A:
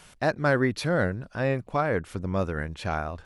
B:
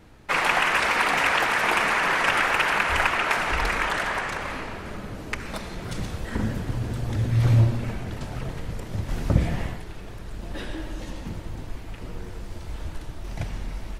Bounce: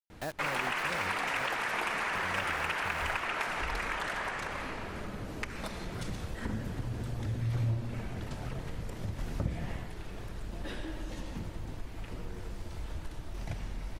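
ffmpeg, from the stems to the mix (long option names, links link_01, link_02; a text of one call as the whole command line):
ffmpeg -i stem1.wav -i stem2.wav -filter_complex "[0:a]asubboost=boost=5:cutoff=89,acrusher=bits=4:mix=0:aa=0.000001,volume=-7.5dB,asplit=3[link_01][link_02][link_03];[link_01]atrim=end=1.47,asetpts=PTS-STARTPTS,afade=type=out:start_time=1.466:duration=0.004:curve=hsin[link_04];[link_02]atrim=start=1.47:end=2.1,asetpts=PTS-STARTPTS,volume=0[link_05];[link_03]atrim=start=2.1,asetpts=PTS-STARTPTS,afade=type=in:duration=0.004:curve=hsin[link_06];[link_04][link_05][link_06]concat=n=3:v=0:a=1,asplit=2[link_07][link_08];[link_08]volume=-19.5dB[link_09];[1:a]adelay=100,volume=0dB[link_10];[link_09]aecho=0:1:990:1[link_11];[link_07][link_10][link_11]amix=inputs=3:normalize=0,acompressor=threshold=-39dB:ratio=2" out.wav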